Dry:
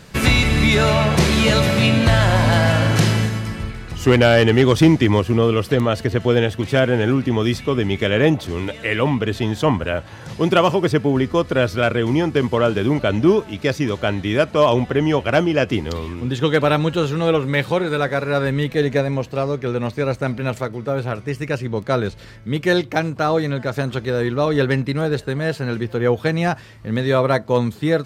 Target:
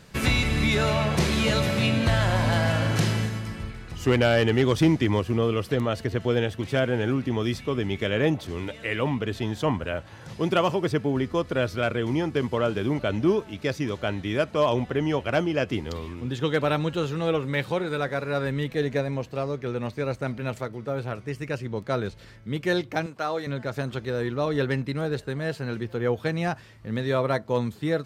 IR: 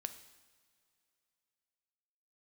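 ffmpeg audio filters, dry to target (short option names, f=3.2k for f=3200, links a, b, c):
-filter_complex "[0:a]asettb=1/sr,asplit=3[a][b][c];[a]atrim=end=23.064[d];[b]atrim=start=23.06:end=23.47,asetpts=PTS-STARTPTS,afade=t=in:d=0.004:c=qsin,afade=t=out:st=0.406:d=0.004:c=qsin,highpass=f=520:p=1[e];[c]atrim=start=23.466[f];[d][e]acrossfade=d=0.004:c1=hsin:c2=qsin[g];[g][f]acrossfade=d=0.004:c1=qsin:c2=hsin,volume=-7.5dB"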